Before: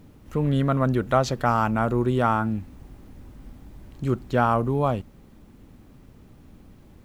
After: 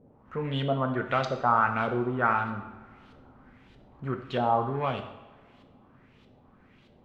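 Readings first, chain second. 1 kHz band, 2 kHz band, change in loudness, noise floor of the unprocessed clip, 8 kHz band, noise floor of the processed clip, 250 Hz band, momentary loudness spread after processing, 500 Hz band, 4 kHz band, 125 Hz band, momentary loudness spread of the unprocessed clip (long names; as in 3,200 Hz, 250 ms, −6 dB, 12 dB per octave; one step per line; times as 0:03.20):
−1.5 dB, +0.5 dB, −4.0 dB, −51 dBFS, can't be measured, −59 dBFS, −8.0 dB, 15 LU, −5.0 dB, −0.5 dB, −9.0 dB, 8 LU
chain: in parallel at −8 dB: gain into a clipping stage and back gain 23.5 dB
on the sum: spectral tilt +2.5 dB per octave
auto-filter low-pass saw up 1.6 Hz 510–3,700 Hz
coupled-rooms reverb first 0.82 s, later 2.6 s, DRR 5 dB
level −7.5 dB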